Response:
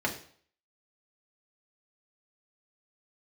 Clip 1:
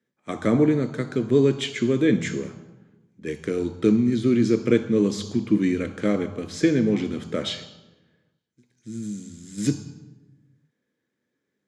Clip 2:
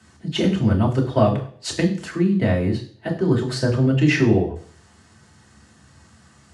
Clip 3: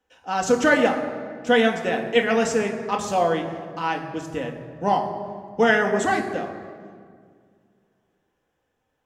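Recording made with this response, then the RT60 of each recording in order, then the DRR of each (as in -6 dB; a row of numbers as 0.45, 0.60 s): 2; 1.1, 0.50, 2.0 s; 9.5, -1.5, 2.0 dB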